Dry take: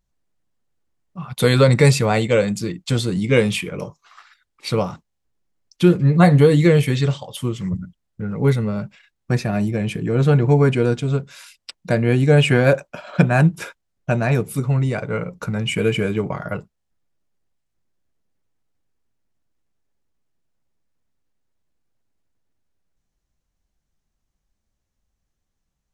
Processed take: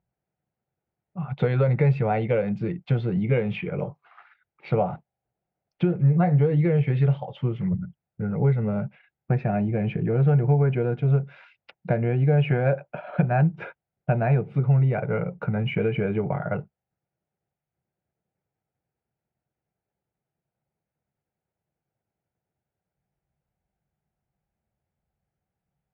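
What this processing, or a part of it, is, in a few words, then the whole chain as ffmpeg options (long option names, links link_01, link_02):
bass amplifier: -filter_complex "[0:a]acompressor=threshold=-19dB:ratio=5,highpass=90,equalizer=frequency=140:width_type=q:width=4:gain=5,equalizer=frequency=270:width_type=q:width=4:gain=-9,equalizer=frequency=760:width_type=q:width=4:gain=5,equalizer=frequency=1100:width_type=q:width=4:gain=-9,equalizer=frequency=1800:width_type=q:width=4:gain=-5,lowpass=frequency=2200:width=0.5412,lowpass=frequency=2200:width=1.3066,asettb=1/sr,asplit=3[link_01][link_02][link_03];[link_01]atrim=end=4.724[link_04];[link_02]atrim=start=4.72:end=5.95,asetpts=PTS-STARTPTS,afade=type=in:duration=0.004:curve=qsin,afade=type=out:start_time=1.226:duration=0.004:curve=qsin,equalizer=frequency=680:width=2.5:gain=6[link_05];[link_03]atrim=start=5.946[link_06];[link_04][link_05]acrossfade=duration=0.004:curve1=hsin:curve2=qsin[link_07];[link_07][link_06]acrossfade=duration=0.004:curve1=qsin:curve2=hsin"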